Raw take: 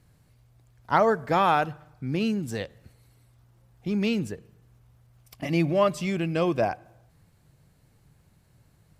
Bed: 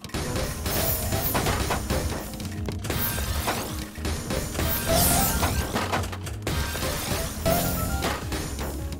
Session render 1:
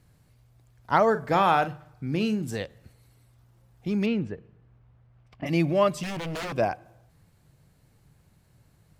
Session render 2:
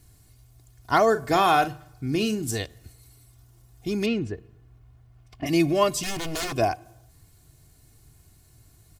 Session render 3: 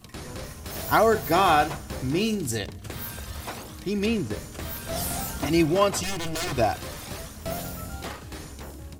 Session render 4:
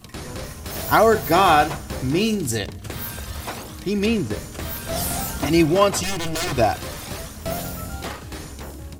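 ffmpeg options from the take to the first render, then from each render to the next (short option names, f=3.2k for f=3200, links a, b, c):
-filter_complex "[0:a]asettb=1/sr,asplit=3[a][b][c];[a]atrim=end=1.104[d];[b]atrim=start=1.1:end=2.56,asetpts=PTS-STARTPTS,afade=t=in:d=0.004:c=qsin,afade=t=out:st=1.456:d=0.004:c=qsin,asplit=2[e][f];[f]adelay=42,volume=-12dB[g];[e][g]amix=inputs=2:normalize=0,atrim=end_sample=64386[h];[c]atrim=start=2.556[i];[d][h]acrossfade=d=0.004:c1=hsin:c2=qsin[j];[j][i]acrossfade=d=0.004:c1=qsin:c2=hsin,asplit=3[k][l][m];[k]afade=t=out:st=4.05:d=0.02[n];[l]lowpass=2.4k,afade=t=in:st=4.05:d=0.02,afade=t=out:st=5.45:d=0.02[o];[m]afade=t=in:st=5.45:d=0.02[p];[n][o][p]amix=inputs=3:normalize=0,asettb=1/sr,asplit=3[q][r][s];[q]atrim=end=6.034[t];[r]atrim=start=6.03:end=6.56,asetpts=PTS-STARTPTS,afade=t=in:d=0.004:c=qsin,afade=t=out:st=0.526:d=0.004:c=qsin,aeval=exprs='0.0398*(abs(mod(val(0)/0.0398+3,4)-2)-1)':c=same[u];[s]atrim=start=6.556[v];[t][u]acrossfade=d=0.004:c1=hsin:c2=qsin[w];[w][v]acrossfade=d=0.004:c1=qsin:c2=hsin"
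-af "bass=f=250:g=5,treble=f=4k:g=12,aecho=1:1:2.8:0.61"
-filter_complex "[1:a]volume=-9dB[a];[0:a][a]amix=inputs=2:normalize=0"
-af "volume=4.5dB,alimiter=limit=-3dB:level=0:latency=1"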